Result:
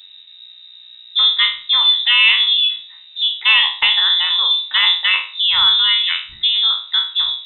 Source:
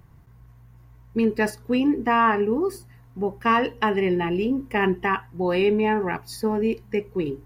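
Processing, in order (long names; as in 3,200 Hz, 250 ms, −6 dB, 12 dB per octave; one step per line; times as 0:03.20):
peak hold with a decay on every bin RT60 0.40 s
voice inversion scrambler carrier 3,800 Hz
level +6.5 dB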